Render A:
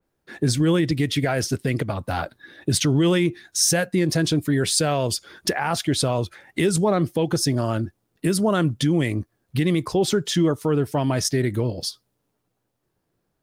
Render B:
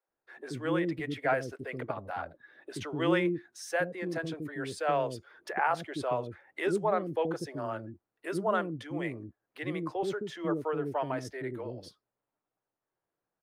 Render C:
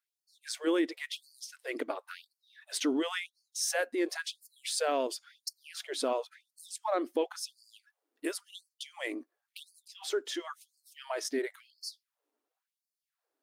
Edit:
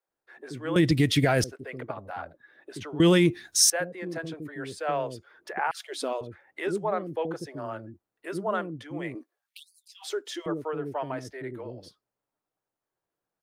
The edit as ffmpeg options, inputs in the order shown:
-filter_complex "[0:a]asplit=2[a][b];[2:a]asplit=2[c][d];[1:a]asplit=5[e][f][g][h][i];[e]atrim=end=0.762[j];[a]atrim=start=0.758:end=1.442[k];[f]atrim=start=1.438:end=3.002[l];[b]atrim=start=2.998:end=3.702[m];[g]atrim=start=3.698:end=5.712[n];[c]atrim=start=5.708:end=6.212[o];[h]atrim=start=6.208:end=9.152[p];[d]atrim=start=9.148:end=10.462[q];[i]atrim=start=10.458[r];[j][k]acrossfade=d=0.004:c1=hsin:c2=hsin[s];[s][l]acrossfade=d=0.004:c1=hsin:c2=hsin[t];[t][m]acrossfade=d=0.004:c1=hsin:c2=hsin[u];[u][n]acrossfade=d=0.004:c1=hsin:c2=hsin[v];[v][o]acrossfade=d=0.004:c1=hsin:c2=hsin[w];[w][p]acrossfade=d=0.004:c1=hsin:c2=hsin[x];[x][q]acrossfade=d=0.004:c1=hsin:c2=hsin[y];[y][r]acrossfade=d=0.004:c1=hsin:c2=hsin"

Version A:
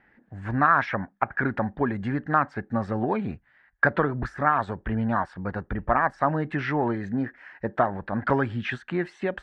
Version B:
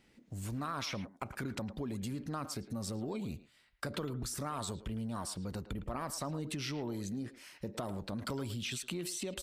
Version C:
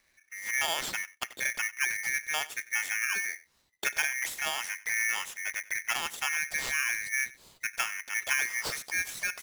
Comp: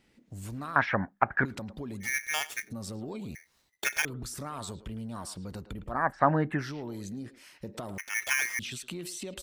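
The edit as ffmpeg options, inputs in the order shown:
-filter_complex "[0:a]asplit=2[a][b];[2:a]asplit=3[c][d][e];[1:a]asplit=6[f][g][h][i][j][k];[f]atrim=end=0.762[l];[a]atrim=start=0.758:end=1.452[m];[g]atrim=start=1.448:end=2.1[n];[c]atrim=start=2:end=2.72[o];[h]atrim=start=2.62:end=3.352[p];[d]atrim=start=3.348:end=4.052[q];[i]atrim=start=4.048:end=6.14[r];[b]atrim=start=5.9:end=6.73[s];[j]atrim=start=6.49:end=7.982[t];[e]atrim=start=7.978:end=8.592[u];[k]atrim=start=8.588[v];[l][m]acrossfade=d=0.004:c1=hsin:c2=hsin[w];[w][n]acrossfade=d=0.004:c1=hsin:c2=hsin[x];[x][o]acrossfade=d=0.1:c1=tri:c2=tri[y];[y][p]acrossfade=d=0.1:c1=tri:c2=tri[z];[z][q]acrossfade=d=0.004:c1=hsin:c2=hsin[aa];[aa][r]acrossfade=d=0.004:c1=hsin:c2=hsin[ab];[ab][s]acrossfade=d=0.24:c1=tri:c2=tri[ac];[ac][t]acrossfade=d=0.24:c1=tri:c2=tri[ad];[ad][u]acrossfade=d=0.004:c1=hsin:c2=hsin[ae];[ae][v]acrossfade=d=0.004:c1=hsin:c2=hsin"

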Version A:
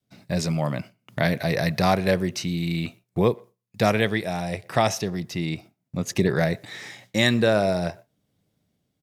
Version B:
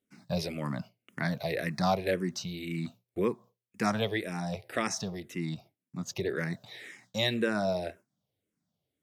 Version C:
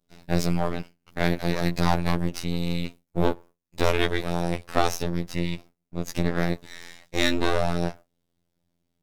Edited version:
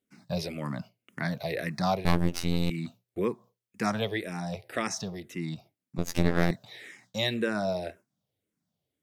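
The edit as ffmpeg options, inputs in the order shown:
-filter_complex "[2:a]asplit=2[a][b];[1:a]asplit=3[c][d][e];[c]atrim=end=2.052[f];[a]atrim=start=2.048:end=2.702[g];[d]atrim=start=2.698:end=5.982[h];[b]atrim=start=5.978:end=6.512[i];[e]atrim=start=6.508[j];[f][g]acrossfade=d=0.004:c1=hsin:c2=hsin[k];[k][h]acrossfade=d=0.004:c1=hsin:c2=hsin[l];[l][i]acrossfade=d=0.004:c1=hsin:c2=hsin[m];[m][j]acrossfade=d=0.004:c1=hsin:c2=hsin"

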